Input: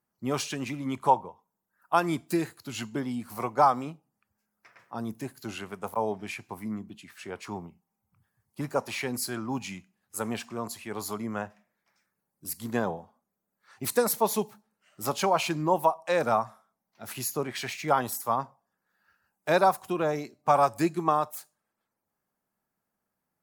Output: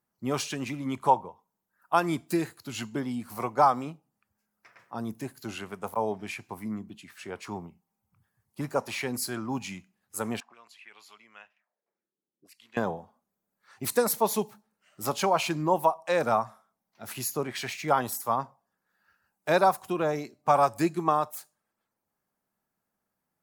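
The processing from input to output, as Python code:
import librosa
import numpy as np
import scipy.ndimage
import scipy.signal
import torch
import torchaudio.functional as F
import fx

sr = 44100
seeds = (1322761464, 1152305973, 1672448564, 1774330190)

y = fx.auto_wah(x, sr, base_hz=320.0, top_hz=2700.0, q=3.4, full_db=-35.0, direction='up', at=(10.4, 12.77))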